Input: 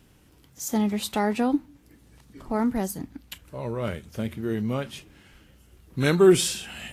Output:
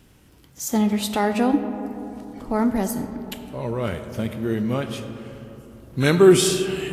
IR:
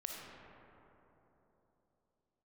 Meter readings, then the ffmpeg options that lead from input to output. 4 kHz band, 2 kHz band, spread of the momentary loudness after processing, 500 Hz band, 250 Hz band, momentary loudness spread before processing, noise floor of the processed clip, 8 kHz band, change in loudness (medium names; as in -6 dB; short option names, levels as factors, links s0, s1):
+4.0 dB, +4.0 dB, 20 LU, +4.0 dB, +4.0 dB, 20 LU, -53 dBFS, +3.5 dB, +3.5 dB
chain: -filter_complex "[0:a]asplit=2[s0][s1];[1:a]atrim=start_sample=2205[s2];[s1][s2]afir=irnorm=-1:irlink=0,volume=0.794[s3];[s0][s3]amix=inputs=2:normalize=0"